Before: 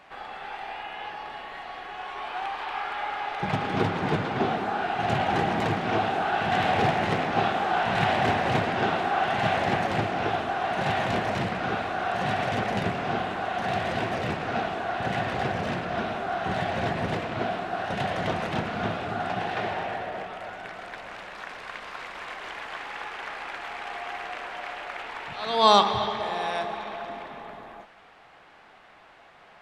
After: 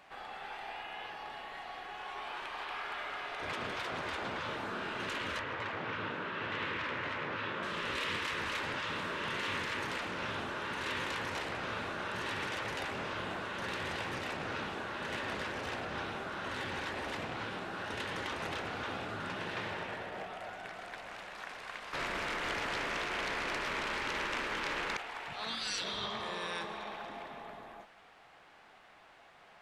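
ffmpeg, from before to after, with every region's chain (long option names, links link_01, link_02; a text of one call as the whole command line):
ffmpeg -i in.wav -filter_complex "[0:a]asettb=1/sr,asplit=3[link_01][link_02][link_03];[link_01]atrim=end=5.394[link_04];[link_02]atrim=start=5.39:end=7.63,asetpts=PTS-STARTPTS,afade=type=in:duration=0.004:curve=qsin,afade=type=out:start_time=2.236:duration=0.004:curve=qsin,highpass=110,lowpass=2300,aemphasis=mode=production:type=cd[link_05];[link_03]atrim=start=7.626[link_06];[link_04][link_05]acrossfade=duration=0.004:curve1=hsin:curve2=qsin[link_07];[link_07][link_06]acrossfade=duration=0.004:curve1=qsin:curve2=hsin,asettb=1/sr,asplit=3[link_08][link_09][link_10];[link_08]atrim=end=21.934[link_11];[link_09]atrim=start=21.93:end=24.97,asetpts=PTS-STARTPTS,afade=type=in:duration=0.004:curve=qsin,afade=type=out:start_time=3.036:duration=0.004:curve=qsin,tiltshelf=frequency=1200:gain=5,bandreject=frequency=780:width=5.4,aeval=exprs='0.075*sin(PI/2*2.51*val(0)/0.075)':channel_layout=same[link_12];[link_10]atrim=start=24.966[link_13];[link_11][link_12]acrossfade=duration=0.004:curve1=hsin:curve2=qsin[link_14];[link_14][link_13]acrossfade=duration=0.004:curve1=qsin:curve2=hsin,afftfilt=real='re*lt(hypot(re,im),0.141)':imag='im*lt(hypot(re,im),0.141)':win_size=1024:overlap=0.75,highshelf=frequency=5200:gain=7,volume=-6.5dB" out.wav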